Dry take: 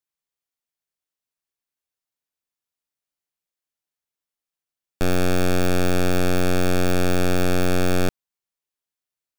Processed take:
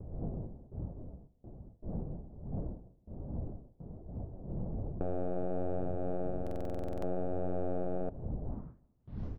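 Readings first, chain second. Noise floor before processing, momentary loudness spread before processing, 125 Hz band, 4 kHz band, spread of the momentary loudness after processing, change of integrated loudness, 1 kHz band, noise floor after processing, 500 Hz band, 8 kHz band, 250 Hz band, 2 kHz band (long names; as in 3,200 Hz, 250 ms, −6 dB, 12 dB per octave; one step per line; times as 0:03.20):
below −85 dBFS, 3 LU, −12.0 dB, below −35 dB, 14 LU, −17.5 dB, −14.0 dB, −67 dBFS, −12.0 dB, below −35 dB, −14.0 dB, −31.0 dB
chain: wind on the microphone 140 Hz −31 dBFS
noise gate with hold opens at −38 dBFS
downward compressor 10 to 1, threshold −29 dBFS, peak gain reduction 16 dB
flanger 1.2 Hz, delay 0.6 ms, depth 5.9 ms, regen −51%
low-pass filter sweep 660 Hz → 6,000 Hz, 0:08.42–0:09.27
on a send: repeating echo 161 ms, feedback 40%, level −24 dB
on the sum: buffer that repeats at 0:06.42, samples 2,048, times 12
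level −1 dB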